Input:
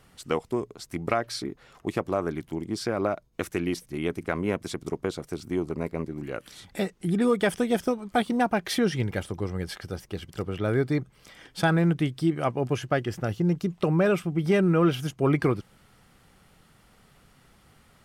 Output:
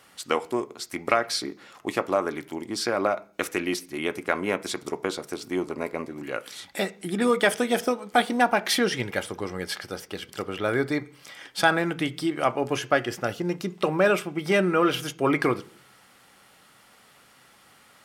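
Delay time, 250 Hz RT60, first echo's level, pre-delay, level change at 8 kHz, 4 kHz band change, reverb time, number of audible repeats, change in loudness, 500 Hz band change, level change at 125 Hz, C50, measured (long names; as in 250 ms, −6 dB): no echo audible, 0.65 s, no echo audible, 3 ms, +6.5 dB, +6.5 dB, 0.45 s, no echo audible, +1.0 dB, +1.5 dB, −8.0 dB, 20.5 dB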